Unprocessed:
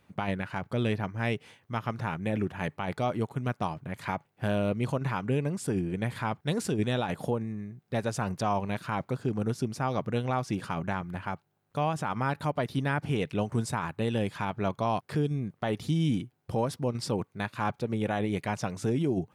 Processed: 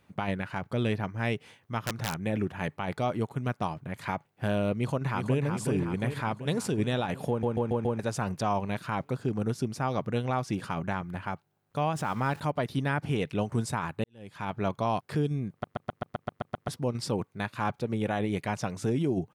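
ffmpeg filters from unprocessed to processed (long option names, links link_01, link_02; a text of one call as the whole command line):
ffmpeg -i in.wav -filter_complex "[0:a]asettb=1/sr,asplit=3[link_01][link_02][link_03];[link_01]atrim=end=1.834[link_04];[link_02]atrim=start=1.83:end=2.25,asetpts=PTS-STARTPTS,afade=type=in:duration=0.004:curve=qsin,afade=type=out:start_time=0.416:duration=0.004:curve=qsin,aeval=exprs='(mod(13.3*val(0)+1,2)-1)/13.3':channel_layout=same[link_05];[link_03]atrim=start=2.246[link_06];[link_04][link_05]acrossfade=duration=0.004:curve1=hsin:curve2=qsin[link_07];[link_07][link_06]acrossfade=duration=0.004:curve1=qsin:curve2=hsin,asplit=2[link_08][link_09];[link_09]afade=type=in:start_time=4.77:duration=0.01,afade=type=out:start_time=5.46:duration=0.01,aecho=0:1:370|740|1110|1480|1850|2220|2590|2960|3330|3700:0.501187|0.325772|0.211752|0.137639|0.0894651|0.0581523|0.037799|0.0245693|0.0159701|0.0103805[link_10];[link_08][link_10]amix=inputs=2:normalize=0,asettb=1/sr,asplit=3[link_11][link_12][link_13];[link_11]atrim=end=11.954[link_14];[link_12]atrim=start=11.95:end=12.4,asetpts=PTS-STARTPTS,afade=type=in:duration=0.004:curve=qsin,afade=type=out:start_time=0.446:duration=0.004:curve=qsin,aeval=exprs='val(0)+0.5*0.00631*sgn(val(0))':channel_layout=same[link_15];[link_13]atrim=start=12.396[link_16];[link_14][link_15]acrossfade=duration=0.004:curve1=hsin:curve2=qsin[link_17];[link_17][link_16]acrossfade=duration=0.004:curve1=qsin:curve2=hsin,asplit=16[link_18][link_19][link_20][link_21][link_22][link_23][link_24][link_25][link_26][link_27][link_28][link_29][link_30][link_31][link_32][link_33];[link_18]atrim=end=7.432[link_34];[link_19]atrim=start=7.288:end=7.432[link_35];[link_20]atrim=start=7.288:end=7.432[link_36];[link_21]atrim=start=7.288:end=7.432[link_37];[link_22]atrim=start=7.288:end=7.432[link_38];[link_23]atrim=start=7.988:end=14.04,asetpts=PTS-STARTPTS,afade=type=out:start_time=6.048:duration=0.004:curve=hsin[link_39];[link_24]atrim=start=14.04:end=15.642,asetpts=PTS-STARTPTS,afade=type=in:duration=0.48:curve=qua[link_40];[link_25]atrim=start=15.508:end=15.642[link_41];[link_26]atrim=start=15.508:end=15.642[link_42];[link_27]atrim=start=15.508:end=15.642[link_43];[link_28]atrim=start=15.508:end=15.642[link_44];[link_29]atrim=start=15.508:end=15.642[link_45];[link_30]atrim=start=15.508:end=15.642[link_46];[link_31]atrim=start=15.508:end=15.642[link_47];[link_32]atrim=start=15.508:end=15.642[link_48];[link_33]atrim=start=16.678[link_49];[link_34][link_35]acrossfade=duration=0.004:curve1=hsin:curve2=hsin[link_50];[link_50][link_36]acrossfade=duration=0.004:curve1=hsin:curve2=hsin[link_51];[link_51][link_37]acrossfade=duration=0.004:curve1=hsin:curve2=hsin[link_52];[link_52][link_38]acrossfade=duration=0.004:curve1=hsin:curve2=hsin[link_53];[link_39][link_40]concat=n=2:v=0:a=1[link_54];[link_53][link_54]acrossfade=duration=0.004:curve1=hsin:curve2=hsin[link_55];[link_55][link_41]acrossfade=duration=0.004:curve1=hsin:curve2=hsin[link_56];[link_56][link_42]acrossfade=duration=0.004:curve1=hsin:curve2=hsin[link_57];[link_57][link_43]acrossfade=duration=0.004:curve1=hsin:curve2=hsin[link_58];[link_58][link_44]acrossfade=duration=0.004:curve1=hsin:curve2=hsin[link_59];[link_59][link_45]acrossfade=duration=0.004:curve1=hsin:curve2=hsin[link_60];[link_60][link_46]acrossfade=duration=0.004:curve1=hsin:curve2=hsin[link_61];[link_61][link_47]acrossfade=duration=0.004:curve1=hsin:curve2=hsin[link_62];[link_62][link_48]acrossfade=duration=0.004:curve1=hsin:curve2=hsin[link_63];[link_63][link_49]acrossfade=duration=0.004:curve1=hsin:curve2=hsin" out.wav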